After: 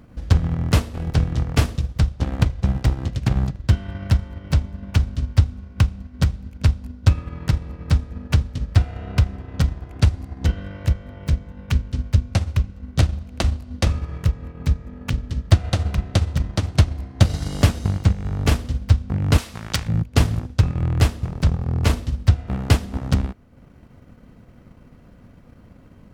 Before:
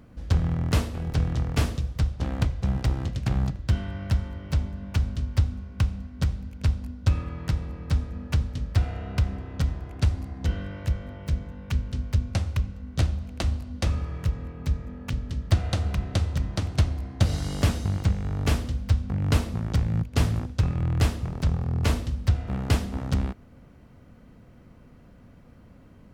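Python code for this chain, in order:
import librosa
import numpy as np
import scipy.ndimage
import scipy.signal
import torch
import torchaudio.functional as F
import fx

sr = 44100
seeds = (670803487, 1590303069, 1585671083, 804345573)

y = fx.tilt_shelf(x, sr, db=-9.5, hz=790.0, at=(19.38, 19.88))
y = fx.transient(y, sr, attack_db=4, sustain_db=-5)
y = y * librosa.db_to_amplitude(3.5)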